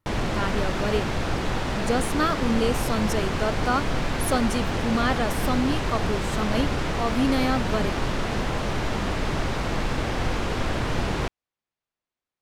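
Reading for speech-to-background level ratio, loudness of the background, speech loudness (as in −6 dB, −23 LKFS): 0.0 dB, −27.5 LKFS, −27.5 LKFS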